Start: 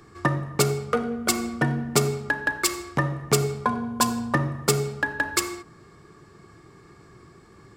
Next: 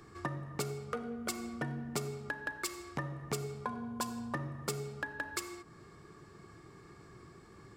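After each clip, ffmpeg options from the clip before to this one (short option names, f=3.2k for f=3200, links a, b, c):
-af "acompressor=threshold=-38dB:ratio=2,volume=-4.5dB"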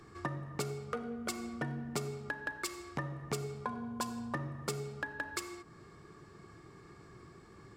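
-af "highshelf=f=11k:g=-6"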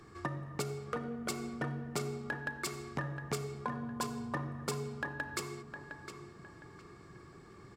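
-filter_complex "[0:a]asplit=2[a][b];[b]adelay=710,lowpass=f=3.7k:p=1,volume=-8dB,asplit=2[c][d];[d]adelay=710,lowpass=f=3.7k:p=1,volume=0.33,asplit=2[e][f];[f]adelay=710,lowpass=f=3.7k:p=1,volume=0.33,asplit=2[g][h];[h]adelay=710,lowpass=f=3.7k:p=1,volume=0.33[i];[a][c][e][g][i]amix=inputs=5:normalize=0"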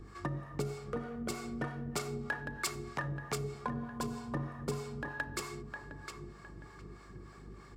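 -filter_complex "[0:a]aeval=exprs='val(0)+0.00251*(sin(2*PI*50*n/s)+sin(2*PI*2*50*n/s)/2+sin(2*PI*3*50*n/s)/3+sin(2*PI*4*50*n/s)/4+sin(2*PI*5*50*n/s)/5)':c=same,acrossover=split=550[a][b];[a]aeval=exprs='val(0)*(1-0.7/2+0.7/2*cos(2*PI*3.2*n/s))':c=same[c];[b]aeval=exprs='val(0)*(1-0.7/2-0.7/2*cos(2*PI*3.2*n/s))':c=same[d];[c][d]amix=inputs=2:normalize=0,volume=3.5dB"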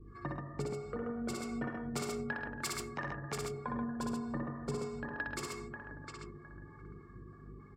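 -af "afftdn=nr=21:nf=-54,aecho=1:1:60|107|132:0.708|0.211|0.631,volume=-3.5dB"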